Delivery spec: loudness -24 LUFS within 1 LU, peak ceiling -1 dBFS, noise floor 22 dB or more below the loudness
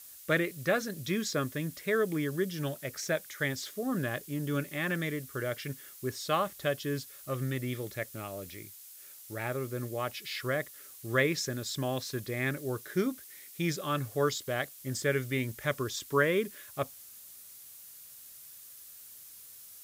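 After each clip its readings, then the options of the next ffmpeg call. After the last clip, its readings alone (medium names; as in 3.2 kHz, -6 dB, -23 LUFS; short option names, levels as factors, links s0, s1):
noise floor -51 dBFS; noise floor target -55 dBFS; loudness -33.0 LUFS; peak level -12.5 dBFS; loudness target -24.0 LUFS
-> -af "afftdn=nr=6:nf=-51"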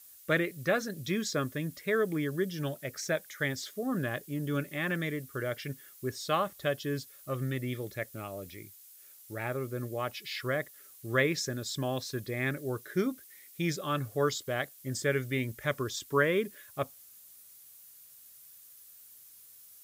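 noise floor -55 dBFS; loudness -33.0 LUFS; peak level -12.5 dBFS; loudness target -24.0 LUFS
-> -af "volume=2.82"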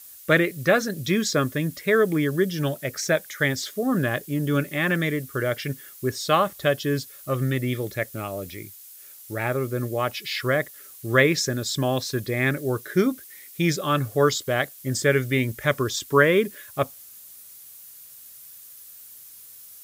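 loudness -24.0 LUFS; peak level -3.5 dBFS; noise floor -46 dBFS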